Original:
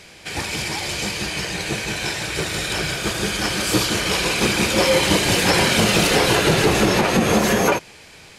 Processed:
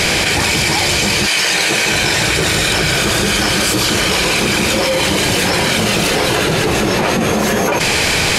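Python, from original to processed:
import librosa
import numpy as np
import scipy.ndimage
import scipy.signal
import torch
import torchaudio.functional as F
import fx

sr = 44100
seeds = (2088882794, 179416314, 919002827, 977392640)

y = fx.highpass(x, sr, hz=fx.line((1.25, 1300.0), (1.92, 330.0)), slope=6, at=(1.25, 1.92), fade=0.02)
y = fx.env_flatten(y, sr, amount_pct=100)
y = F.gain(torch.from_numpy(y), -1.0).numpy()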